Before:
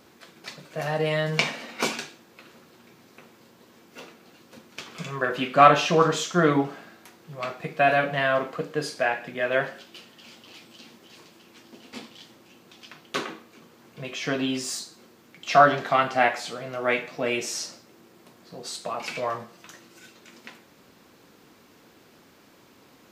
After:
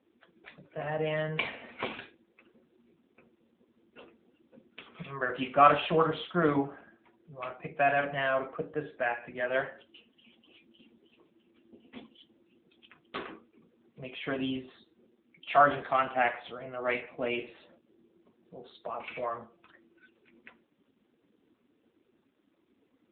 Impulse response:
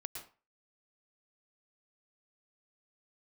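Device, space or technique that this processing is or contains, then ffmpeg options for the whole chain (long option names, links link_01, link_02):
mobile call with aggressive noise cancelling: -af "highpass=frequency=130:poles=1,afftdn=noise_reduction=15:noise_floor=-45,volume=-5dB" -ar 8000 -c:a libopencore_amrnb -b:a 7950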